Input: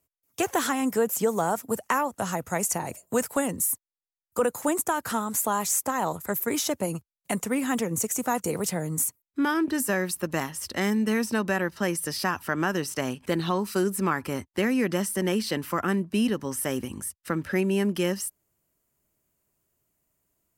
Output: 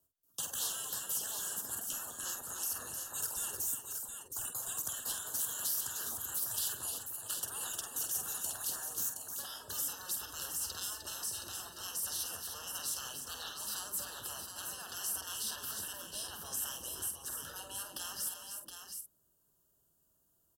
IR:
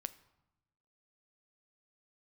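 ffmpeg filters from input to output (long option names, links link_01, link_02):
-filter_complex "[0:a]afftfilt=real='re*lt(hypot(re,im),0.0501)':imag='im*lt(hypot(re,im),0.0501)':win_size=1024:overlap=0.75,highshelf=frequency=6900:gain=5,acrossover=split=140|1400|2100[link_01][link_02][link_03][link_04];[link_02]alimiter=level_in=16dB:limit=-24dB:level=0:latency=1:release=168,volume=-16dB[link_05];[link_01][link_05][link_03][link_04]amix=inputs=4:normalize=0,asuperstop=centerf=2200:order=8:qfactor=2.1,asplit=2[link_06][link_07];[link_07]adelay=48,volume=-8dB[link_08];[link_06][link_08]amix=inputs=2:normalize=0,aecho=1:1:181|305|719:0.106|0.422|0.473,volume=-4dB"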